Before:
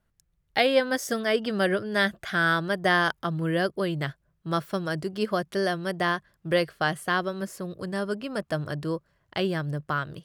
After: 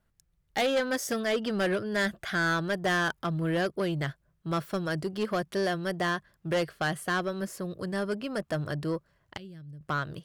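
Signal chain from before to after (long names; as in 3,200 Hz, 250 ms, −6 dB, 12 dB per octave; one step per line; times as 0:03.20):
0:09.37–0:09.81: guitar amp tone stack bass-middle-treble 10-0-1
soft clipping −22 dBFS, distortion −11 dB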